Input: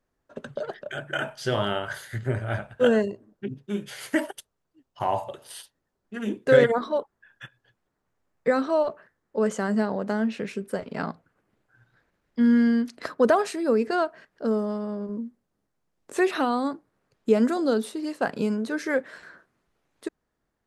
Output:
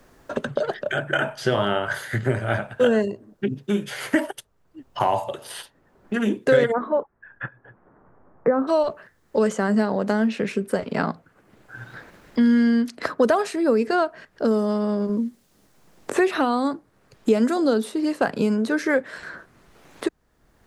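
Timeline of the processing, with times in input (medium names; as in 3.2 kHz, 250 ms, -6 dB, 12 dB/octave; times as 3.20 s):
6.72–8.67 s: low-pass 2.1 kHz -> 1.2 kHz 24 dB/octave
whole clip: three bands compressed up and down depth 70%; trim +4 dB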